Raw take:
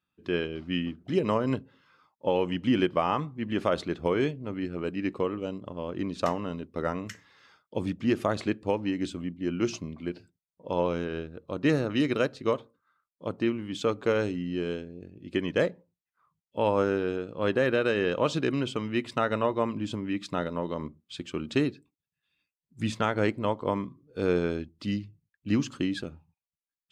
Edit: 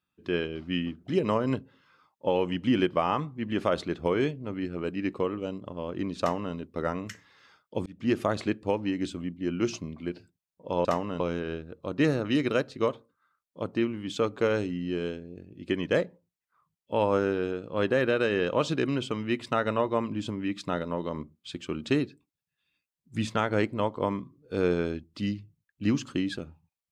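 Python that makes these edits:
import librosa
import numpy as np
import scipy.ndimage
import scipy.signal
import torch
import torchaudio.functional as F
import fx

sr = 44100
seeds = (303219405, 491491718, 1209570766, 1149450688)

y = fx.edit(x, sr, fx.duplicate(start_s=6.2, length_s=0.35, to_s=10.85),
    fx.fade_in_span(start_s=7.86, length_s=0.25), tone=tone)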